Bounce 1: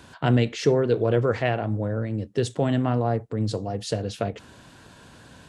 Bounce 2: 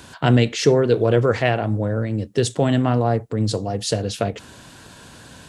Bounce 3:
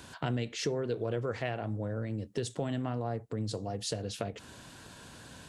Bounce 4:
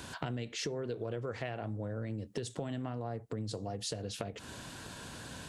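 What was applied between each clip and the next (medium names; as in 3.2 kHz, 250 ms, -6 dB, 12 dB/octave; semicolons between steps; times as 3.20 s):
treble shelf 4.2 kHz +7 dB; trim +4.5 dB
compression 2.5:1, threshold -27 dBFS, peak gain reduction 11.5 dB; trim -7 dB
compression 3:1, threshold -41 dBFS, peak gain reduction 11 dB; trim +4 dB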